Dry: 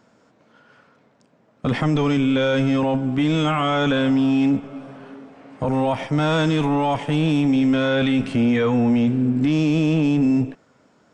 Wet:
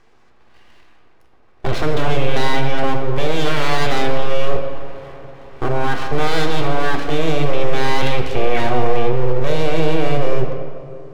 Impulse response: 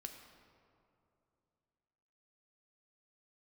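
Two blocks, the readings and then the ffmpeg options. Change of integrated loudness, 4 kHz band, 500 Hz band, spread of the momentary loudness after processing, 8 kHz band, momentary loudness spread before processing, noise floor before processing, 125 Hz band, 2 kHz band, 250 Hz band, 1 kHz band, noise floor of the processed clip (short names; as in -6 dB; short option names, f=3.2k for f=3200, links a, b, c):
-1.0 dB, +3.0 dB, +4.0 dB, 11 LU, n/a, 5 LU, -59 dBFS, -0.5 dB, +3.5 dB, -8.5 dB, +4.5 dB, -48 dBFS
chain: -filter_complex "[0:a]lowpass=5.1k,aeval=exprs='abs(val(0))':c=same[a];[1:a]atrim=start_sample=2205[b];[a][b]afir=irnorm=-1:irlink=0,volume=8.5dB"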